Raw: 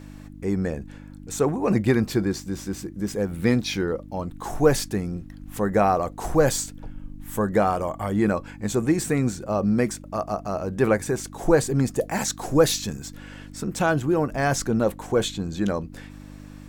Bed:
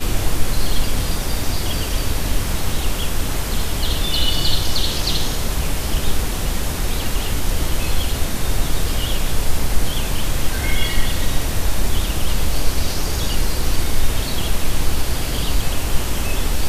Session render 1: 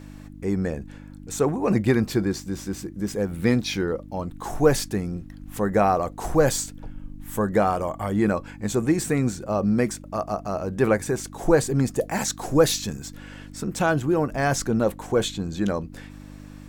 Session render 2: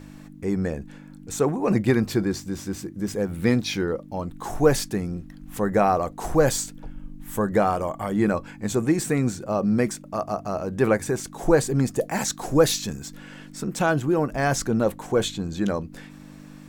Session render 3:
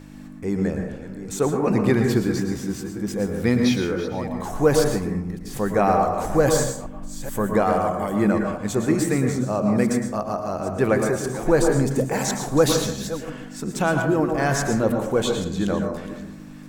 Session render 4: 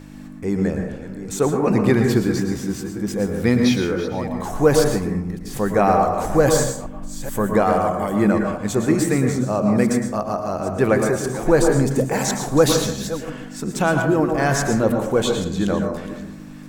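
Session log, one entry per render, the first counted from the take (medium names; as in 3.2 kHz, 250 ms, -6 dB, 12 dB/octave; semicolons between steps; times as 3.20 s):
no audible change
de-hum 50 Hz, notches 2
chunks repeated in reverse 429 ms, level -13 dB; plate-style reverb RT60 0.62 s, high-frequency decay 0.4×, pre-delay 100 ms, DRR 3.5 dB
trim +2.5 dB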